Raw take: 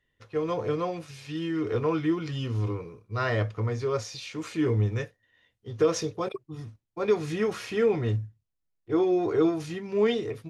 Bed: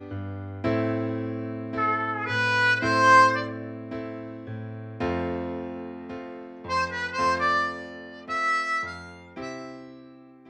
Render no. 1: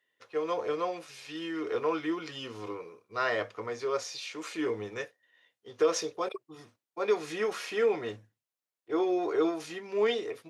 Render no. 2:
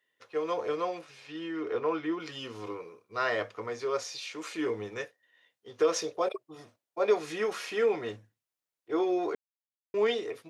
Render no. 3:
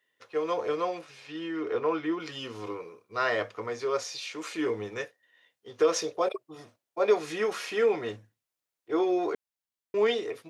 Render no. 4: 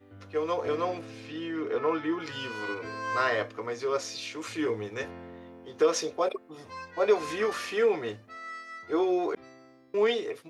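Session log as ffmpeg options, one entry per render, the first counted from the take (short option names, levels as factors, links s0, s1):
-af "highpass=430"
-filter_complex "[0:a]asettb=1/sr,asplit=3[s0][s1][s2];[s0]atrim=end=1.014[s3];[s1]atrim=start=1.01:end=2.2,asetpts=PTS-STARTPTS,afade=t=in:d=0.004:c=qsin,afade=t=out:st=1.186:d=0.004:c=qsin,lowpass=f=2500:p=1[s4];[s2]atrim=start=2.196[s5];[s3][s4]acrossfade=d=0.004:c1=hsin:c2=qsin[s6];[s6][s5]acrossfade=d=0.004:c1=qsin:c2=hsin,asettb=1/sr,asplit=3[s7][s8][s9];[s7]atrim=end=6.074[s10];[s8]atrim=start=6.07:end=7.19,asetpts=PTS-STARTPTS,afade=t=in:d=0.004:c=qsin,afade=t=out:st=1.116:d=0.004:c=qsin,equalizer=f=620:t=o:w=0.56:g=8.5[s11];[s9]atrim=start=7.186[s12];[s10][s11]acrossfade=d=0.004:c1=hsin:c2=qsin[s13];[s13][s12]acrossfade=d=0.004:c1=qsin:c2=hsin,asplit=3[s14][s15][s16];[s14]atrim=end=9.35,asetpts=PTS-STARTPTS,afade=t=out:st=9.346:d=0.004:c=hsin[s17];[s15]atrim=start=9.35:end=9.94,asetpts=PTS-STARTPTS,volume=0[s18];[s16]atrim=start=9.94,asetpts=PTS-STARTPTS,afade=t=in:d=0.004:c=hsin[s19];[s17][s18][s19]concat=n=3:v=0:a=1"
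-af "volume=1.26"
-filter_complex "[1:a]volume=0.158[s0];[0:a][s0]amix=inputs=2:normalize=0"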